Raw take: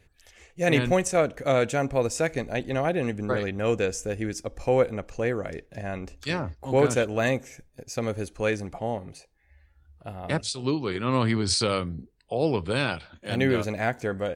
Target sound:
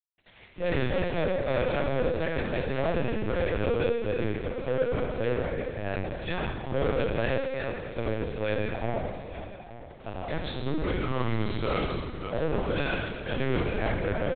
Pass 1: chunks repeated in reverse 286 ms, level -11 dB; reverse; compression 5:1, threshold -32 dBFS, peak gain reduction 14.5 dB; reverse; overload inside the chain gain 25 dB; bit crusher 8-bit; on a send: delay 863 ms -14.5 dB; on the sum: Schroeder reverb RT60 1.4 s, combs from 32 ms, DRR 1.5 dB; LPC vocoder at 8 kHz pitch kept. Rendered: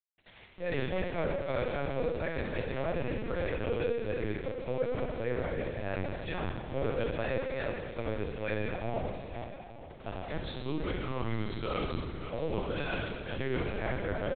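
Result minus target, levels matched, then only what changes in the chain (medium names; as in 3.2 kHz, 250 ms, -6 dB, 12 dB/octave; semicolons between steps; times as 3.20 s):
compression: peak gain reduction +9 dB
change: compression 5:1, threshold -20.5 dBFS, peak gain reduction 5 dB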